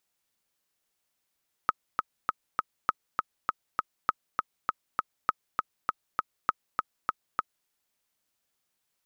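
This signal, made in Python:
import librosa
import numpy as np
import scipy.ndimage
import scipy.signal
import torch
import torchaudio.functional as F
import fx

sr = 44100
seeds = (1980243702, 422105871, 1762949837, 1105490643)

y = fx.click_track(sr, bpm=200, beats=4, bars=5, hz=1270.0, accent_db=3.0, level_db=-9.5)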